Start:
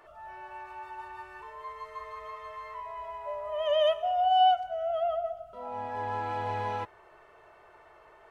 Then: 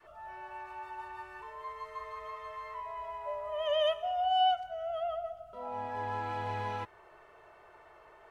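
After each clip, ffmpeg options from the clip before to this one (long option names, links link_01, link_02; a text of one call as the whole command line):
ffmpeg -i in.wav -af "adynamicequalizer=threshold=0.0112:dfrequency=620:dqfactor=0.92:tfrequency=620:tqfactor=0.92:attack=5:release=100:ratio=0.375:range=2.5:mode=cutabove:tftype=bell,volume=-1dB" out.wav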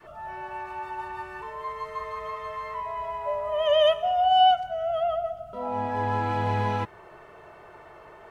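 ffmpeg -i in.wav -af "equalizer=frequency=170:width_type=o:width=1.9:gain=9.5,volume=7.5dB" out.wav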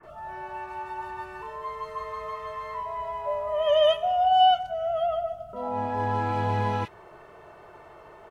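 ffmpeg -i in.wav -filter_complex "[0:a]acrossover=split=2000[link_01][link_02];[link_02]adelay=30[link_03];[link_01][link_03]amix=inputs=2:normalize=0" out.wav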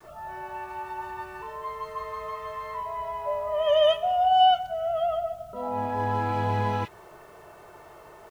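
ffmpeg -i in.wav -af "acrusher=bits=9:mix=0:aa=0.000001" out.wav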